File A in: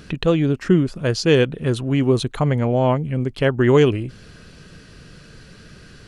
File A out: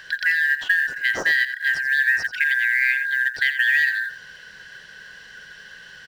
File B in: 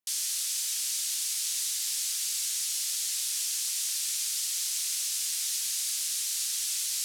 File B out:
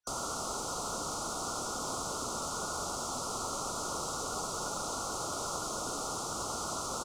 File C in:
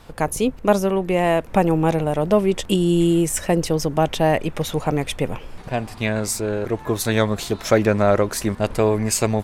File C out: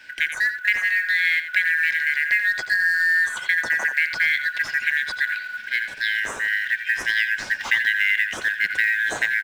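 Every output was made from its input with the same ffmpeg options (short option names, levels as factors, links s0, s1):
-filter_complex "[0:a]afftfilt=real='real(if(lt(b,272),68*(eq(floor(b/68),0)*3+eq(floor(b/68),1)*0+eq(floor(b/68),2)*1+eq(floor(b/68),3)*2)+mod(b,68),b),0)':imag='imag(if(lt(b,272),68*(eq(floor(b/68),0)*3+eq(floor(b/68),1)*0+eq(floor(b/68),2)*1+eq(floor(b/68),3)*2)+mod(b,68),b),0)':win_size=2048:overlap=0.75,lowpass=7100,acrossover=split=230|3800[s0][s1][s2];[s0]acompressor=threshold=0.00447:ratio=4[s3];[s1]acompressor=threshold=0.141:ratio=4[s4];[s2]acompressor=threshold=0.00891:ratio=4[s5];[s3][s4][s5]amix=inputs=3:normalize=0,acrusher=bits=7:mode=log:mix=0:aa=0.000001,asplit=2[s6][s7];[s7]aecho=0:1:86:0.282[s8];[s6][s8]amix=inputs=2:normalize=0"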